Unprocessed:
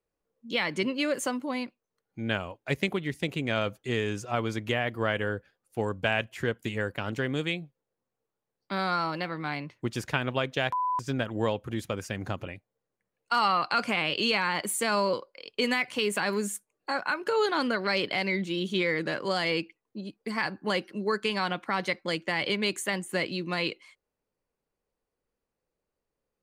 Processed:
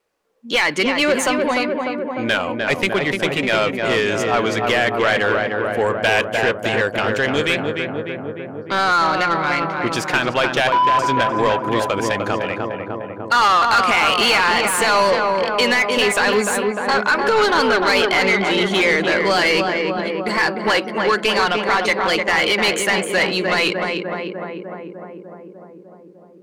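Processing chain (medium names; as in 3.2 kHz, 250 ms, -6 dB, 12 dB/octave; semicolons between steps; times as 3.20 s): filtered feedback delay 300 ms, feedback 75%, low-pass 1.6 kHz, level -5 dB; vibrato 2.4 Hz 27 cents; overdrive pedal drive 20 dB, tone 4.8 kHz, clips at -10 dBFS; trim +3.5 dB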